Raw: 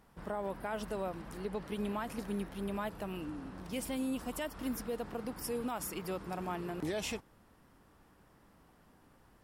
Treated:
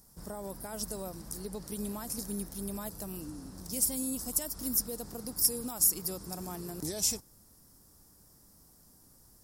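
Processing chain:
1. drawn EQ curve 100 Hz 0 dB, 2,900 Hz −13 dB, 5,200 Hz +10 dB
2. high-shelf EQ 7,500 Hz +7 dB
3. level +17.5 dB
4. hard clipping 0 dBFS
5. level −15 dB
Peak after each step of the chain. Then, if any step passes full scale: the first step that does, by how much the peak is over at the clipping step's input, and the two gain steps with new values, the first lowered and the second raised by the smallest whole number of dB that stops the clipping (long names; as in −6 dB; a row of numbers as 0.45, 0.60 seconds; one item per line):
−17.5, −13.0, +4.5, 0.0, −15.0 dBFS
step 3, 4.5 dB
step 3 +12.5 dB, step 5 −10 dB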